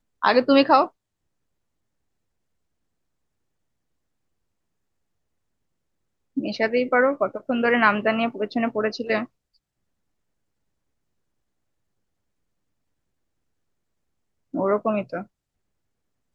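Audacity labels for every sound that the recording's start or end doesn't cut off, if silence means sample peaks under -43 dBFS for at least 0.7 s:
6.370000	9.250000	sound
14.540000	15.240000	sound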